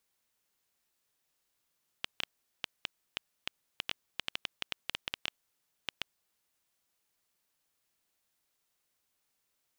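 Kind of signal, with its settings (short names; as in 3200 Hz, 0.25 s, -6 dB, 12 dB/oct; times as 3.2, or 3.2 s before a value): random clicks 5/s -14.5 dBFS 4.70 s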